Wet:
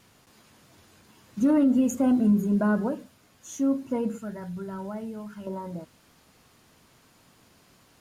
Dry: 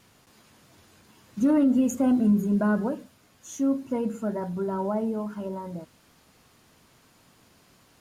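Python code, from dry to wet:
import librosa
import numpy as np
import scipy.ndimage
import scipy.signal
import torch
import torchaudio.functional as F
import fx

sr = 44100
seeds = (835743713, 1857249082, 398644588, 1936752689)

y = fx.band_shelf(x, sr, hz=500.0, db=-9.5, octaves=2.7, at=(4.18, 5.47))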